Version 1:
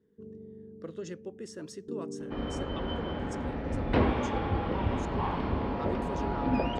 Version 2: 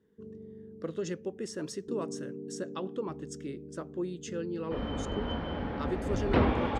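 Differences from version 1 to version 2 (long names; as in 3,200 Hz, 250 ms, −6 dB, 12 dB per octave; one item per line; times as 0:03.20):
speech +5.0 dB
second sound: entry +2.40 s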